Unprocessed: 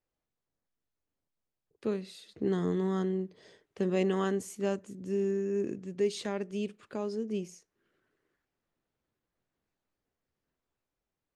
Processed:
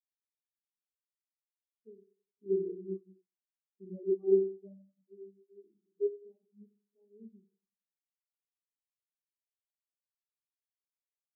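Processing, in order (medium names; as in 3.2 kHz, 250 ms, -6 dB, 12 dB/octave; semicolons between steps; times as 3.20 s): spring tank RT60 2.1 s, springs 31/44 ms, chirp 25 ms, DRR -0.5 dB; spectral contrast expander 4:1; trim -1.5 dB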